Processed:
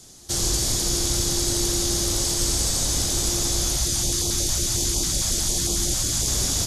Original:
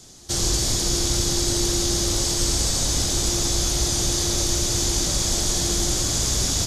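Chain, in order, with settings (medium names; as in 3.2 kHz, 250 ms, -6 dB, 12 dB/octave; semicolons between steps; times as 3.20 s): peaking EQ 11 kHz +7.5 dB 0.65 oct; 3.76–6.28 s: step-sequenced notch 11 Hz 370–1700 Hz; trim -2 dB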